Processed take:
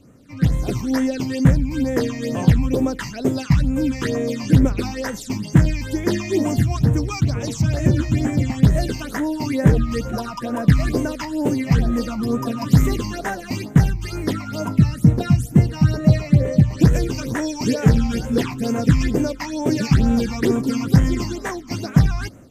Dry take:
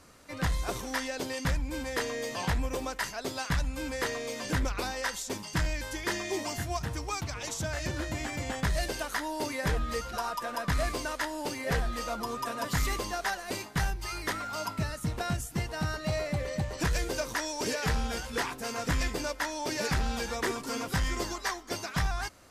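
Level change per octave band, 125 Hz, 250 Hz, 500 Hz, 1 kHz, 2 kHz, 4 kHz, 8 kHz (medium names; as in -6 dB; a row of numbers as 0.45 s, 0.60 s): +18.0 dB, +18.5 dB, +9.5 dB, +3.0 dB, +2.0 dB, +3.0 dB, +2.5 dB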